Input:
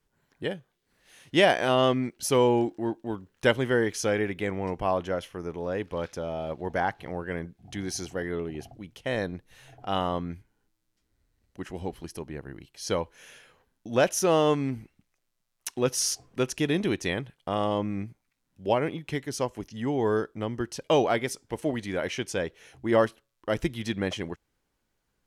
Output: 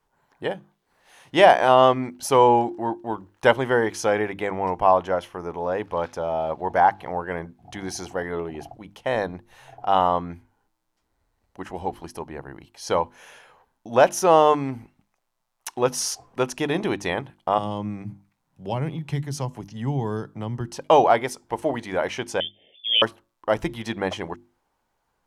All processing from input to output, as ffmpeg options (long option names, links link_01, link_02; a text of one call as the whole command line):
ffmpeg -i in.wav -filter_complex "[0:a]asettb=1/sr,asplit=3[link_01][link_02][link_03];[link_01]atrim=end=17.584[link_04];[link_02]atrim=start=17.58:end=20.76,asetpts=PTS-STARTPTS,afade=type=in:duration=0.004:curve=qsin,afade=type=out:start_time=3.176:duration=0.004:curve=qsin,equalizer=frequency=140:width=2.3:gain=12.5,acrossover=split=280|3000[link_05][link_06][link_07];[link_06]acompressor=threshold=-47dB:ratio=2:attack=3.2:release=140:knee=2.83:detection=peak[link_08];[link_05][link_08][link_07]amix=inputs=3:normalize=0[link_09];[link_03]atrim=start=20.756[link_10];[link_04][link_09]acrossfade=duration=0.004:curve1=hsin:curve2=qsin[link_11];[link_11][link_10]acrossfade=duration=0.004:curve1=qsin:curve2=hsin,asettb=1/sr,asplit=3[link_12][link_13][link_14];[link_12]atrim=end=22.404[link_15];[link_13]atrim=start=22.4:end=23.02,asetpts=PTS-STARTPTS,afade=type=in:duration=0.004:curve=qsin,afade=type=out:start_time=0.616:duration=0.004:curve=qsin,lowpass=frequency=3100:width_type=q:width=0.5098,lowpass=frequency=3100:width_type=q:width=0.6013,lowpass=frequency=3100:width_type=q:width=0.9,lowpass=frequency=3100:width_type=q:width=2.563,afreqshift=-3600,asuperstop=centerf=1200:order=8:qfactor=0.64[link_16];[link_14]atrim=start=23.016[link_17];[link_15][link_16]acrossfade=duration=0.004:curve1=hsin:curve2=qsin[link_18];[link_18][link_17]acrossfade=duration=0.004:curve1=qsin:curve2=hsin,equalizer=frequency=880:width_type=o:width=1.2:gain=13,bandreject=frequency=50:width_type=h:width=6,bandreject=frequency=100:width_type=h:width=6,bandreject=frequency=150:width_type=h:width=6,bandreject=frequency=200:width_type=h:width=6,bandreject=frequency=250:width_type=h:width=6,bandreject=frequency=300:width_type=h:width=6,bandreject=frequency=350:width_type=h:width=6" out.wav